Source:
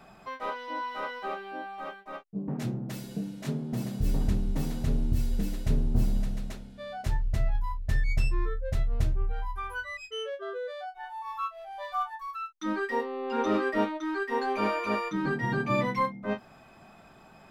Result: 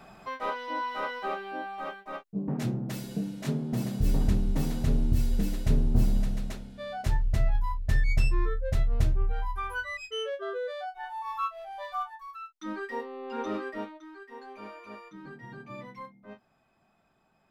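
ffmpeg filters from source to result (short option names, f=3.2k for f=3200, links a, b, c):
-af "volume=2dB,afade=t=out:st=11.55:d=0.63:silence=0.421697,afade=t=out:st=13.42:d=0.68:silence=0.298538"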